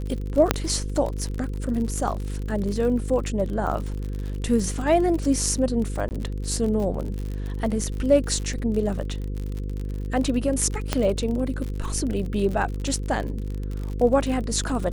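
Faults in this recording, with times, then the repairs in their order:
buzz 50 Hz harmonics 10 -29 dBFS
crackle 55/s -29 dBFS
0.51 pop -2 dBFS
6.09–6.11 gap 19 ms
10.93 pop -7 dBFS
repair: de-click; de-hum 50 Hz, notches 10; interpolate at 6.09, 19 ms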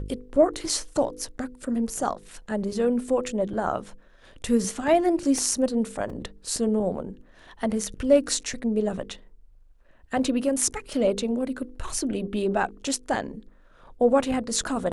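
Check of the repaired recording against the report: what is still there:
10.93 pop

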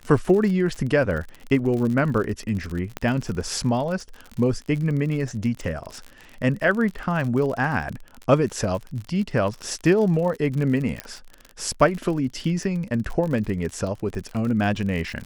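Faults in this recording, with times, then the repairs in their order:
crackle 48/s -29 dBFS
2.97 pop -13 dBFS
11 pop -12 dBFS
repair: de-click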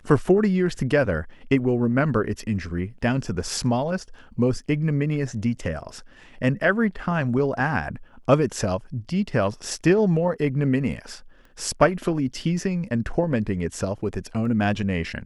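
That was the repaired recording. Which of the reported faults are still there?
none

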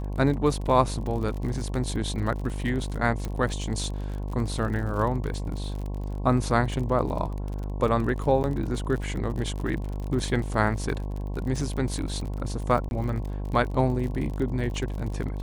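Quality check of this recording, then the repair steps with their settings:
buzz 50 Hz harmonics 22 -31 dBFS
crackle 45/s -33 dBFS
3.25 pop -18 dBFS
8.43–8.44 gap 9.8 ms
12.89–12.91 gap 21 ms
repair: de-click; de-hum 50 Hz, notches 22; interpolate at 8.43, 9.8 ms; interpolate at 12.89, 21 ms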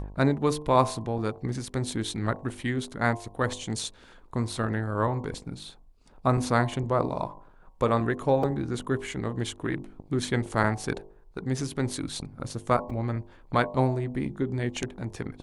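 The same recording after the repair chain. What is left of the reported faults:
none

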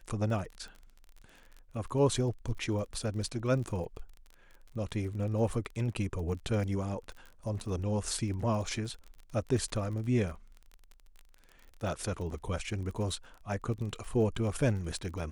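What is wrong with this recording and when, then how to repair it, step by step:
crackle 32/s -40 dBFS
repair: de-click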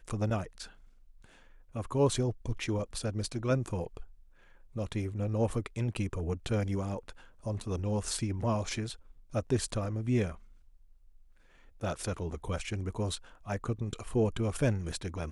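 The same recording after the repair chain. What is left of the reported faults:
none

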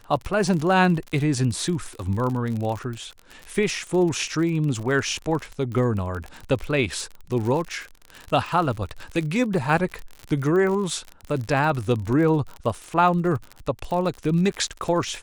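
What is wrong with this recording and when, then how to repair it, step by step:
crackle 42/s -28 dBFS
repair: de-click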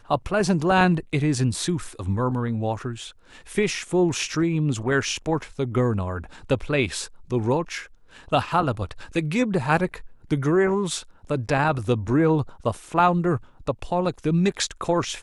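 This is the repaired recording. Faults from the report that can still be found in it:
none

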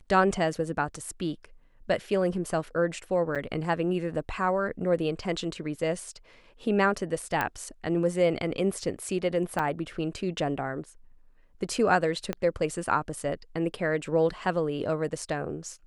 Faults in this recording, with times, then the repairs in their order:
3.35–3.36 gap 6.7 ms
7.41 pop -13 dBFS
9.59–9.6 gap 5.3 ms
12.33 pop -16 dBFS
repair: de-click; interpolate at 3.35, 6.7 ms; interpolate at 9.59, 5.3 ms

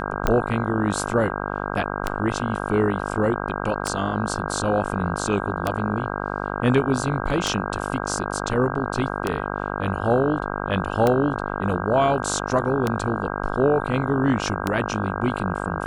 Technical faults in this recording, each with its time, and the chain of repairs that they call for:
buzz 50 Hz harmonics 32 -28 dBFS
tick 33 1/3 rpm -7 dBFS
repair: de-click; de-hum 50 Hz, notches 32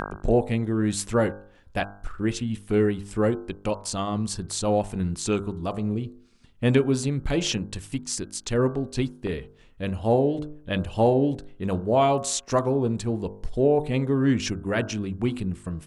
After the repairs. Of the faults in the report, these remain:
none

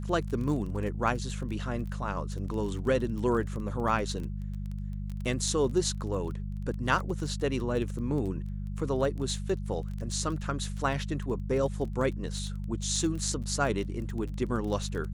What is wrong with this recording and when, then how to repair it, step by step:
crackle 21/s -35 dBFS
hum 50 Hz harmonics 4 -35 dBFS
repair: de-click; de-hum 50 Hz, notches 4

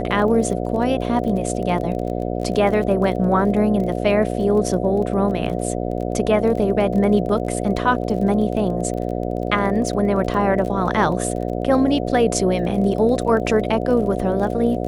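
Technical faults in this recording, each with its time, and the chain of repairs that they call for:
buzz 60 Hz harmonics 12 -24 dBFS
crackle 27/s -28 dBFS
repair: de-click; de-hum 60 Hz, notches 12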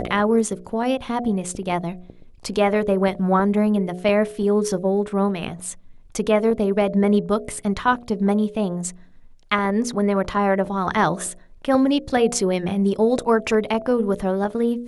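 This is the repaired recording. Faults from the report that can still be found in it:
none

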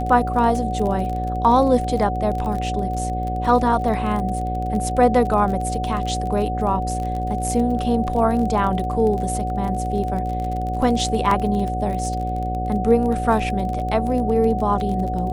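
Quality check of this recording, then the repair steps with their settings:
buzz 60 Hz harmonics 11 -26 dBFS
crackle 26/s -26 dBFS
tone 740 Hz -25 dBFS
11.31 gap 3 ms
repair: de-click; de-hum 60 Hz, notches 11; notch 740 Hz, Q 30; interpolate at 11.31, 3 ms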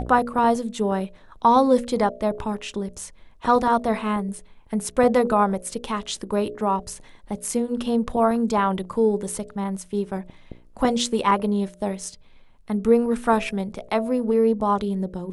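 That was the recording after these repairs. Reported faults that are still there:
none

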